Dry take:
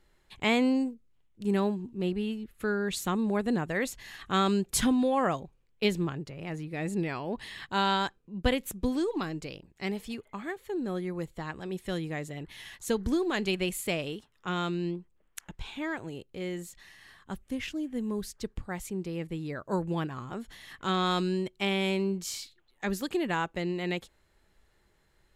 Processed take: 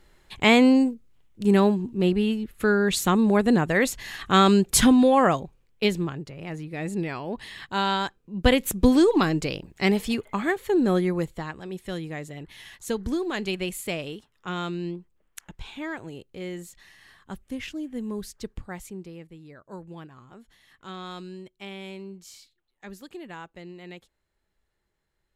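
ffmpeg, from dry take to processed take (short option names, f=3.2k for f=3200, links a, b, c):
-af "volume=18dB,afade=t=out:st=5.09:d=0.99:silence=0.473151,afade=t=in:st=8.18:d=0.69:silence=0.334965,afade=t=out:st=10.93:d=0.62:silence=0.281838,afade=t=out:st=18.58:d=0.72:silence=0.281838"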